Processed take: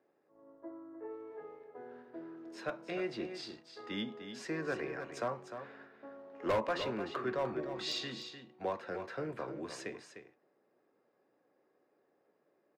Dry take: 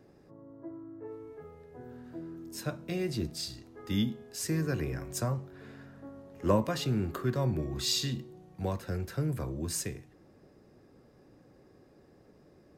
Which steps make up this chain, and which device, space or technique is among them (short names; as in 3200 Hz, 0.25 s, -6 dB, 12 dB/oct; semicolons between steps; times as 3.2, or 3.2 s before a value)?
walkie-talkie (BPF 530–2700 Hz; hard clip -30 dBFS, distortion -10 dB; gate -57 dBFS, range -12 dB); low shelf 480 Hz +4 dB; echo 0.302 s -9.5 dB; gain +1.5 dB